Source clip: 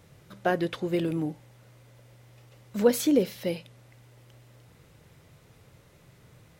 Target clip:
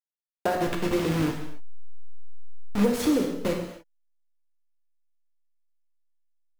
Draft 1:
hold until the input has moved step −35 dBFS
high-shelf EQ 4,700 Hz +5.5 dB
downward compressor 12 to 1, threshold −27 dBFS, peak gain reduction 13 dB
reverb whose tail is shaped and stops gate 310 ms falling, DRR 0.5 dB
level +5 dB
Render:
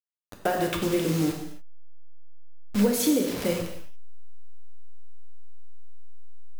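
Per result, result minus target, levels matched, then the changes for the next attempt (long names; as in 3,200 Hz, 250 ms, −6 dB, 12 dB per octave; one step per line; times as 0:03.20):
8,000 Hz band +6.0 dB; hold until the input has moved: distortion −4 dB
change: high-shelf EQ 4,700 Hz −5 dB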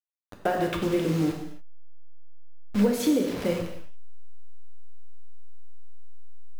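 hold until the input has moved: distortion −4 dB
change: hold until the input has moved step −27.5 dBFS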